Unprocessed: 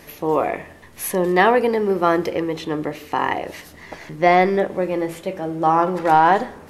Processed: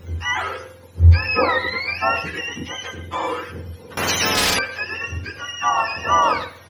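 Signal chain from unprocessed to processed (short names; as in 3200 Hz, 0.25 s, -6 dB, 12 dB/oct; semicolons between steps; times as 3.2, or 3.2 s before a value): spectrum mirrored in octaves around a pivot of 960 Hz; speakerphone echo 0.11 s, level -12 dB; on a send at -15.5 dB: reverb RT60 0.40 s, pre-delay 3 ms; 3.97–4.59 on the sum: spectral compressor 10:1; gain -1 dB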